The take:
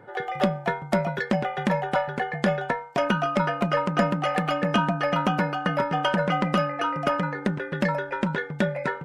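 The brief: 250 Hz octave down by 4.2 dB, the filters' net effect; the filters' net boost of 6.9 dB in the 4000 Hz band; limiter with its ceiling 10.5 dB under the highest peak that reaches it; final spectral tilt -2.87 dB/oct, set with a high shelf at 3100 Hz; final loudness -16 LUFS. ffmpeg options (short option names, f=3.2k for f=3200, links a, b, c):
-af "equalizer=f=250:t=o:g=-6.5,highshelf=f=3.1k:g=8.5,equalizer=f=4k:t=o:g=4,volume=11.5dB,alimiter=limit=-4.5dB:level=0:latency=1"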